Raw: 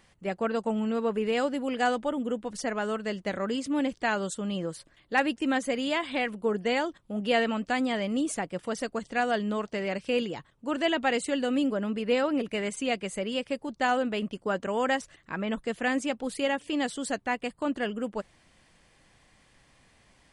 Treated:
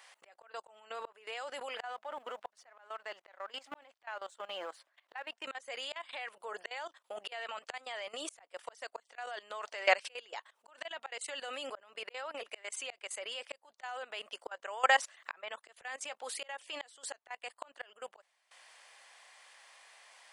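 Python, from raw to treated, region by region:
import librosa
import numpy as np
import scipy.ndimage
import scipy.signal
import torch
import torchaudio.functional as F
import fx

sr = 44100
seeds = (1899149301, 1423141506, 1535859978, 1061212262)

y = fx.chain(x, sr, fx.law_mismatch(coded='A'),
    fx.lowpass(hz=2000.0, slope=6),
    fx.peak_eq(hz=470.0, db=-6.0, octaves=0.24), at=(1.77, 5.44))
y = scipy.signal.sosfilt(scipy.signal.butter(4, 660.0, 'highpass', fs=sr, output='sos'), y)
y = fx.auto_swell(y, sr, attack_ms=778.0)
y = fx.level_steps(y, sr, step_db=18)
y = y * 10.0 ** (13.0 / 20.0)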